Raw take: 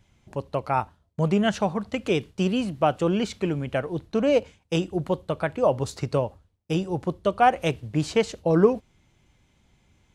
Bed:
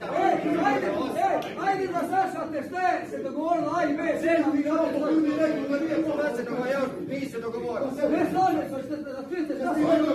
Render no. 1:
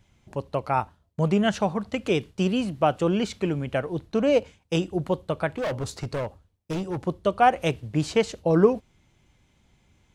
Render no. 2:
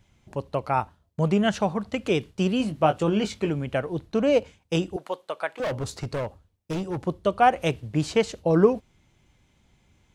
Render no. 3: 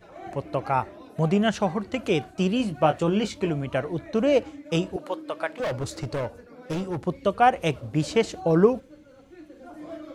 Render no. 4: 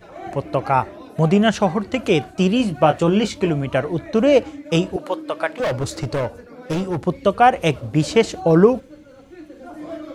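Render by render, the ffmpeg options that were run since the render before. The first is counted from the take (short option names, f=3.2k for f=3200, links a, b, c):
-filter_complex "[0:a]asettb=1/sr,asplit=3[a][b][c];[a]atrim=end=5.554[d];[b]atrim=start=5.55:end=7.01,asetpts=PTS-STARTPTS,afade=t=in:d=0.004:c=qsin,afade=t=out:st=1.456:d=0.004:c=qsin,asoftclip=type=hard:threshold=-25dB[e];[c]atrim=start=7.006[f];[d][e]acrossfade=d=0.004:c1=hsin:c2=qsin[g];[g][f]acrossfade=d=0.004:c1=qsin:c2=hsin"
-filter_complex "[0:a]asettb=1/sr,asplit=3[a][b][c];[a]atrim=end=2.584[d];[b]atrim=start=2.58:end=3.5,asetpts=PTS-STARTPTS,afade=t=in:d=0.004:c=qsin,afade=t=out:st=0.916:d=0.004:c=qsin,asplit=2[e][f];[f]adelay=19,volume=-7.5dB[g];[e][g]amix=inputs=2:normalize=0,atrim=end_sample=40572[h];[c]atrim=start=3.496[i];[d][h]acrossfade=d=0.004:c1=hsin:c2=qsin[j];[j][i]acrossfade=d=0.004:c1=qsin:c2=hsin,asettb=1/sr,asplit=3[k][l][m];[k]atrim=end=4.964[n];[l]atrim=start=4.96:end=5.6,asetpts=PTS-STARTPTS,afade=t=in:d=0.004:c=qsin,afade=t=out:st=0.636:d=0.004:c=qsin,highpass=620[o];[m]atrim=start=5.596[p];[n][o]acrossfade=d=0.004:c1=hsin:c2=qsin[q];[q][p]acrossfade=d=0.004:c1=qsin:c2=hsin"
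-filter_complex "[1:a]volume=-17.5dB[a];[0:a][a]amix=inputs=2:normalize=0"
-af "volume=6.5dB,alimiter=limit=-2dB:level=0:latency=1"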